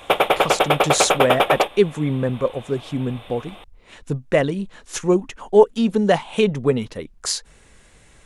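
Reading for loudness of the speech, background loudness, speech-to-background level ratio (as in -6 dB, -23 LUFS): -21.5 LUFS, -18.5 LUFS, -3.0 dB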